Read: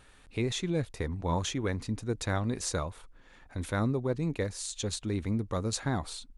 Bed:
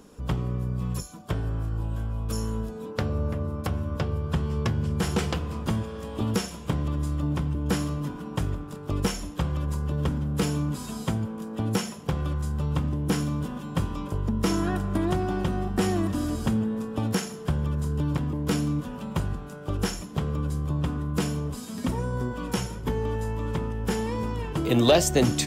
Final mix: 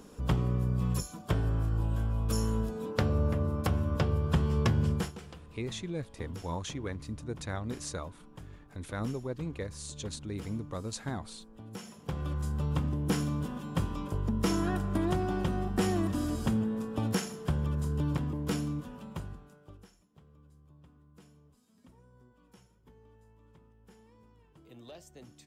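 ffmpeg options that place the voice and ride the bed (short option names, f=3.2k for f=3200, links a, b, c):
-filter_complex "[0:a]adelay=5200,volume=-6dB[a];[1:a]volume=15.5dB,afade=t=out:st=4.89:d=0.23:silence=0.105925,afade=t=in:st=11.71:d=0.75:silence=0.158489,afade=t=out:st=18.07:d=1.79:silence=0.0446684[b];[a][b]amix=inputs=2:normalize=0"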